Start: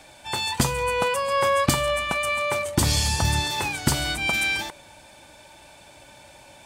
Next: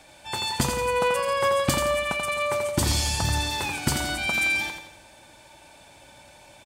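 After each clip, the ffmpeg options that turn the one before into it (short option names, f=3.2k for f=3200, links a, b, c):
-af "aecho=1:1:85|170|255|340|425:0.501|0.226|0.101|0.0457|0.0206,volume=-3dB"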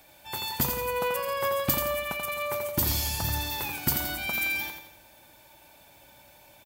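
-af "aexciter=amount=14.3:drive=2.4:freq=12k,volume=-5.5dB"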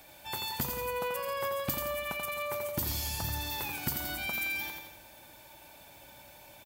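-af "acompressor=threshold=-38dB:ratio=2,volume=1.5dB"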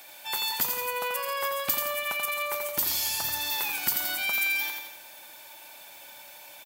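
-af "highpass=f=1.2k:p=1,volume=8dB"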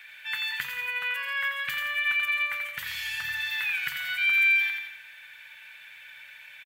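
-af "firequalizer=gain_entry='entry(140,0);entry(310,-23);entry(440,-11);entry(680,-16);entry(1700,15);entry(3200,6);entry(4900,-9);entry(14000,-14)':delay=0.05:min_phase=1,volume=-4.5dB"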